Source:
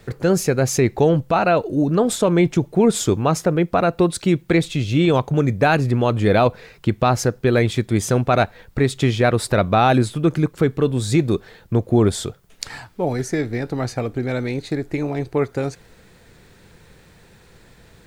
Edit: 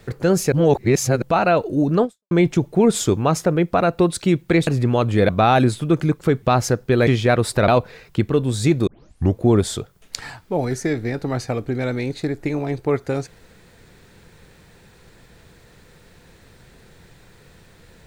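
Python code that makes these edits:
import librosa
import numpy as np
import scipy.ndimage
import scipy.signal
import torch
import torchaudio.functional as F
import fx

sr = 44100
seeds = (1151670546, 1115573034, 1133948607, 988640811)

y = fx.edit(x, sr, fx.reverse_span(start_s=0.52, length_s=0.7),
    fx.fade_out_span(start_s=2.04, length_s=0.27, curve='exp'),
    fx.cut(start_s=4.67, length_s=1.08),
    fx.swap(start_s=6.37, length_s=0.6, other_s=9.63, other_length_s=1.13),
    fx.cut(start_s=7.62, length_s=1.4),
    fx.tape_start(start_s=11.35, length_s=0.5), tone=tone)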